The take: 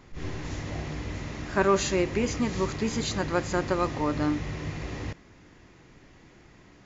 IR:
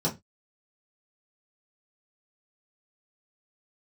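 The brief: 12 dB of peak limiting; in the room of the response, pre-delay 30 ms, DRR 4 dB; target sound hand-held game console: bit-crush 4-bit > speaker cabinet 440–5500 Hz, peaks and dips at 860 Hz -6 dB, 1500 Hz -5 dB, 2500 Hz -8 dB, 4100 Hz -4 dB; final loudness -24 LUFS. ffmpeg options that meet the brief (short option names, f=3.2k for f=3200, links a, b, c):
-filter_complex "[0:a]alimiter=limit=-20.5dB:level=0:latency=1,asplit=2[a][b];[1:a]atrim=start_sample=2205,adelay=30[c];[b][c]afir=irnorm=-1:irlink=0,volume=-13dB[d];[a][d]amix=inputs=2:normalize=0,acrusher=bits=3:mix=0:aa=0.000001,highpass=440,equalizer=f=860:t=q:w=4:g=-6,equalizer=f=1.5k:t=q:w=4:g=-5,equalizer=f=2.5k:t=q:w=4:g=-8,equalizer=f=4.1k:t=q:w=4:g=-4,lowpass=f=5.5k:w=0.5412,lowpass=f=5.5k:w=1.3066,volume=8dB"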